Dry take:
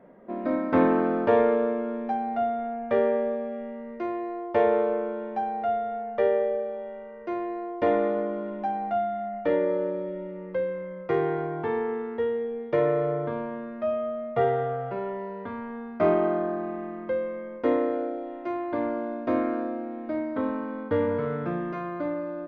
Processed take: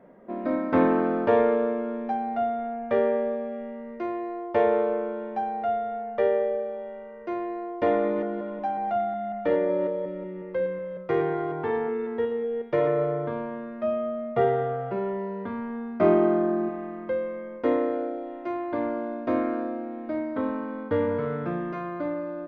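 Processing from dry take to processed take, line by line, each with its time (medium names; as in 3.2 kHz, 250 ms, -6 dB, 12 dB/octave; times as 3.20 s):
7.86–13.04 s: chunks repeated in reverse 183 ms, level -10 dB
13.82–16.69 s: small resonant body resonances 210/360 Hz, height 9 dB, ringing for 85 ms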